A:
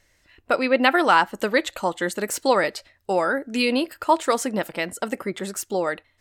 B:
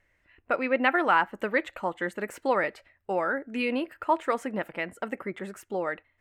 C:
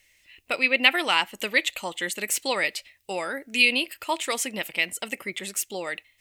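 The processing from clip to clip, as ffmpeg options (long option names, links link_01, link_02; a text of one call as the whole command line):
ffmpeg -i in.wav -af "highshelf=frequency=3200:width_type=q:width=1.5:gain=-11.5,volume=-6.5dB" out.wav
ffmpeg -i in.wav -af "aexciter=amount=14.9:drive=2.3:freq=2300,volume=-3dB" out.wav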